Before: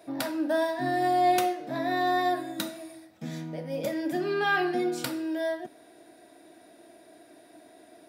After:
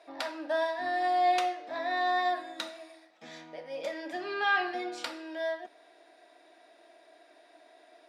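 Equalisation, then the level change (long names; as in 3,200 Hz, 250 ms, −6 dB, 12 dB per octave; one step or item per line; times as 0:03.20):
band-pass filter 640–5,000 Hz
notch filter 1,500 Hz, Q 19
0.0 dB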